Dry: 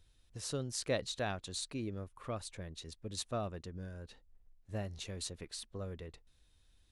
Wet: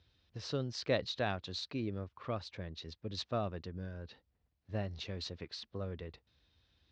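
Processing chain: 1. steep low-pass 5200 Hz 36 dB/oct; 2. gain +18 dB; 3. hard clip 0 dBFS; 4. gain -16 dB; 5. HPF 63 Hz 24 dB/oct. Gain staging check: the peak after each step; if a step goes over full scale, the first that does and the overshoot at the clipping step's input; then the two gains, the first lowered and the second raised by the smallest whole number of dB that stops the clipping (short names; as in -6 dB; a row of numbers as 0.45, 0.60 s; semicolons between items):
-23.0, -5.0, -5.0, -21.0, -19.0 dBFS; no overload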